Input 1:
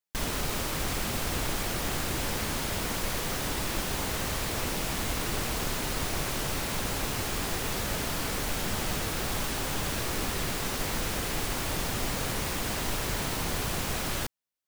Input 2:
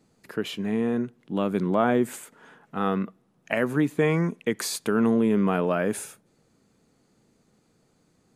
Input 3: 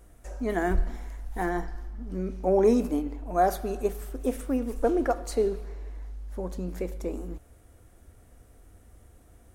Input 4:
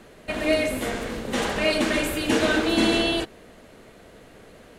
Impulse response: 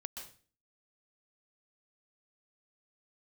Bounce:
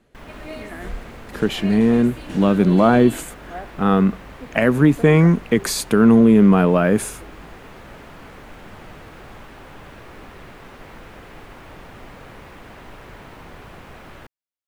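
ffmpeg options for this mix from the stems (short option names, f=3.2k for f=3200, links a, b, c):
-filter_complex "[0:a]acrossover=split=2800[a][b];[b]acompressor=threshold=-49dB:ratio=4:attack=1:release=60[c];[a][c]amix=inputs=2:normalize=0,bass=f=250:g=-9,treble=f=4k:g=-3,volume=-6.5dB[d];[1:a]acontrast=30,adelay=1050,volume=2dB[e];[2:a]lowpass=f=2.1k:t=q:w=4.9,adelay=150,volume=-13.5dB[f];[3:a]volume=-14.5dB[g];[d][e][f][g]amix=inputs=4:normalize=0,bass=f=250:g=6,treble=f=4k:g=-1"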